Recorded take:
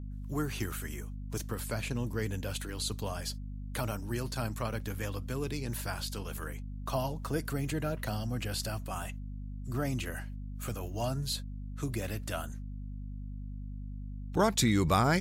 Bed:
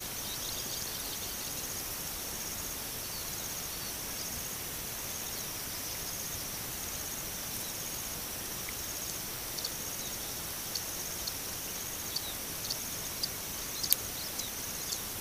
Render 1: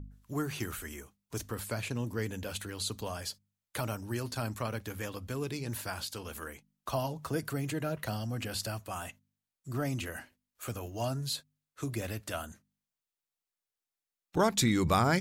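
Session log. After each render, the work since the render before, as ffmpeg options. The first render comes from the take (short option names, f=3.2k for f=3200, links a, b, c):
-af "bandreject=f=50:t=h:w=4,bandreject=f=100:t=h:w=4,bandreject=f=150:t=h:w=4,bandreject=f=200:t=h:w=4,bandreject=f=250:t=h:w=4"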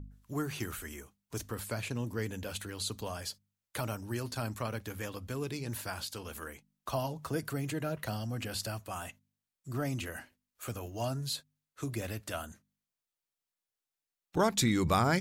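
-af "volume=-1dB"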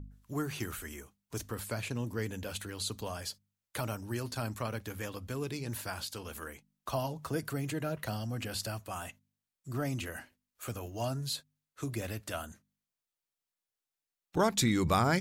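-af anull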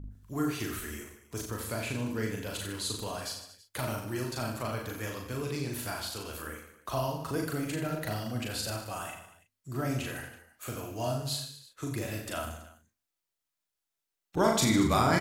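-filter_complex "[0:a]asplit=2[a][b];[b]adelay=37,volume=-6.5dB[c];[a][c]amix=inputs=2:normalize=0,aecho=1:1:40|90|152.5|230.6|328.3:0.631|0.398|0.251|0.158|0.1"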